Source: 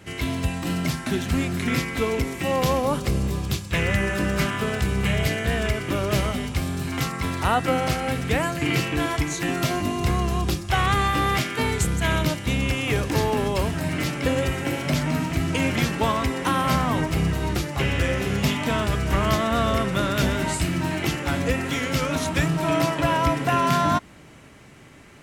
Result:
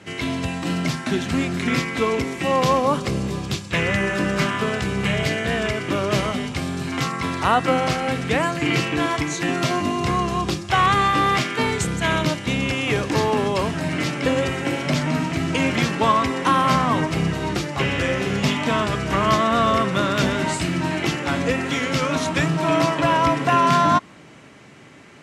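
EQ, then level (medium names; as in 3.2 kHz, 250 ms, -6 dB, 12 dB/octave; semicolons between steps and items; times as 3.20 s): band-pass 130–7600 Hz; dynamic bell 1.1 kHz, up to +6 dB, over -42 dBFS, Q 8; +3.0 dB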